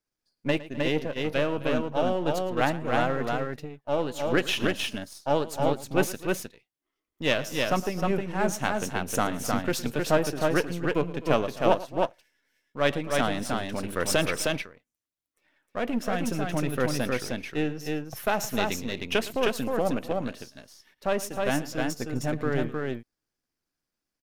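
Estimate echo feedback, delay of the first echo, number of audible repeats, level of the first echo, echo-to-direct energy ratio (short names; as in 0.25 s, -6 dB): no steady repeat, 0.111 s, 3, -17.5 dB, -3.0 dB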